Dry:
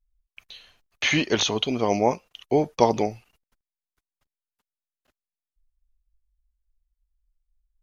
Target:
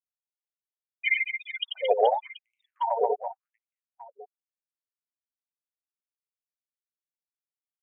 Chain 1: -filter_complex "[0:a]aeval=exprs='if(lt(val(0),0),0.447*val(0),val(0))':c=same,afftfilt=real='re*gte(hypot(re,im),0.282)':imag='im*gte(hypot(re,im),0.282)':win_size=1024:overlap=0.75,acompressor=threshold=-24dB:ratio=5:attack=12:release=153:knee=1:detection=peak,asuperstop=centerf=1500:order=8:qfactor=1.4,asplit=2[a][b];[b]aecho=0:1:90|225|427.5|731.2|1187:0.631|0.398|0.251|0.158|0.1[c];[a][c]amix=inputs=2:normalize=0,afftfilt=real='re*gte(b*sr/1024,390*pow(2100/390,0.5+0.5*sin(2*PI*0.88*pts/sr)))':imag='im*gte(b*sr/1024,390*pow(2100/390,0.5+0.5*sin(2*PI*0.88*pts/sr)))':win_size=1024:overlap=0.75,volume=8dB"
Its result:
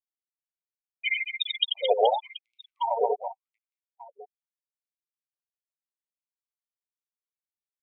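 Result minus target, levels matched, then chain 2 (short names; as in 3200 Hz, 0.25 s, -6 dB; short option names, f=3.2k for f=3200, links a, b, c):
4000 Hz band +7.5 dB
-filter_complex "[0:a]aeval=exprs='if(lt(val(0),0),0.447*val(0),val(0))':c=same,afftfilt=real='re*gte(hypot(re,im),0.282)':imag='im*gte(hypot(re,im),0.282)':win_size=1024:overlap=0.75,acompressor=threshold=-24dB:ratio=5:attack=12:release=153:knee=1:detection=peak,asuperstop=centerf=4300:order=8:qfactor=1.4,asplit=2[a][b];[b]aecho=0:1:90|225|427.5|731.2|1187:0.631|0.398|0.251|0.158|0.1[c];[a][c]amix=inputs=2:normalize=0,afftfilt=real='re*gte(b*sr/1024,390*pow(2100/390,0.5+0.5*sin(2*PI*0.88*pts/sr)))':imag='im*gte(b*sr/1024,390*pow(2100/390,0.5+0.5*sin(2*PI*0.88*pts/sr)))':win_size=1024:overlap=0.75,volume=8dB"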